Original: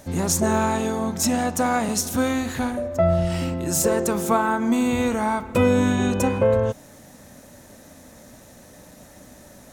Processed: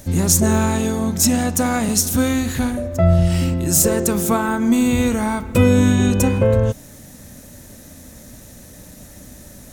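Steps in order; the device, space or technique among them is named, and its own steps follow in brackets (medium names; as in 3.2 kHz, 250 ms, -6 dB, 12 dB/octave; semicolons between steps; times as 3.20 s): smiley-face EQ (bass shelf 120 Hz +9 dB; peaking EQ 850 Hz -6 dB 1.6 oct; treble shelf 8.1 kHz +7 dB); trim +4 dB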